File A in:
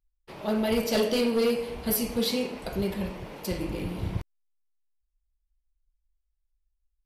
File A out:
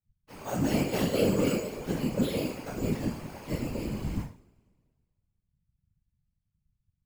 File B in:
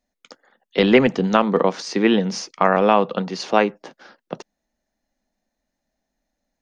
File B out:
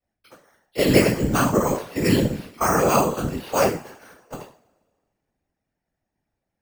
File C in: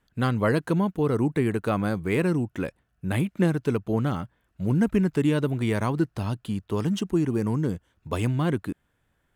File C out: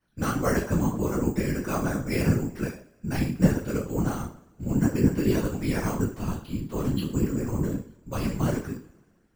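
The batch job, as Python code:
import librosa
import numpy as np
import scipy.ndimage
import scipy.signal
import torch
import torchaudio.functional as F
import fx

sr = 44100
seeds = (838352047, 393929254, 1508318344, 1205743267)

y = np.repeat(scipy.signal.resample_poly(x, 1, 6), 6)[:len(x)]
y = fx.rev_double_slope(y, sr, seeds[0], early_s=0.37, late_s=1.7, knee_db=-26, drr_db=-9.5)
y = fx.whisperise(y, sr, seeds[1])
y = y * librosa.db_to_amplitude(-11.5)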